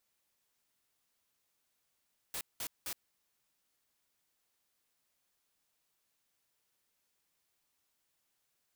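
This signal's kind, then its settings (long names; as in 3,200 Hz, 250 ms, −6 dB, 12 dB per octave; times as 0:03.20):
noise bursts white, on 0.07 s, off 0.19 s, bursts 3, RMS −39.5 dBFS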